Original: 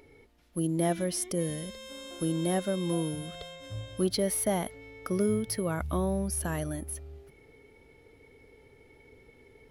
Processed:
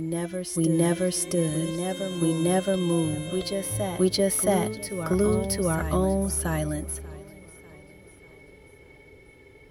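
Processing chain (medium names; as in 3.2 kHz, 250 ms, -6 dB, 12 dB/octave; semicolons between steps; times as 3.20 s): comb of notches 230 Hz; reverse echo 672 ms -6.5 dB; modulated delay 592 ms, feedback 52%, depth 63 cents, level -20.5 dB; trim +6 dB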